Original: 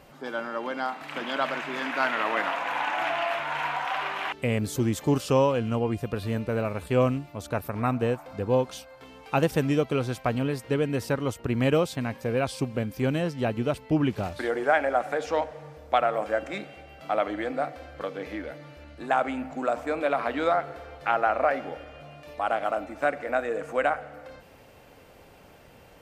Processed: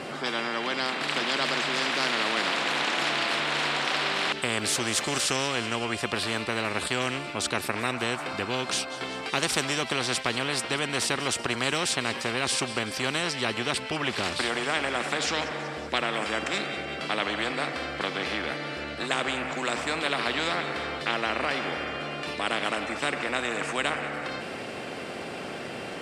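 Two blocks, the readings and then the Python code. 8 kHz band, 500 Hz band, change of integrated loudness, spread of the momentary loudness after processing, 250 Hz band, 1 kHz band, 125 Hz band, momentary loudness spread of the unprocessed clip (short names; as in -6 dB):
+13.0 dB, -5.0 dB, 0.0 dB, 7 LU, -4.0 dB, -2.0 dB, -8.0 dB, 12 LU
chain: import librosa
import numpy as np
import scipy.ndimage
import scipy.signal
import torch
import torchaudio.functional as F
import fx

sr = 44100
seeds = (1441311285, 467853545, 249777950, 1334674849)

y = fx.cabinet(x, sr, low_hz=200.0, low_slope=12, high_hz=8800.0, hz=(230.0, 370.0, 910.0, 6400.0), db=(6, 10, -7, -7))
y = fx.echo_wet_highpass(y, sr, ms=188, feedback_pct=64, hz=3000.0, wet_db=-18)
y = fx.spectral_comp(y, sr, ratio=4.0)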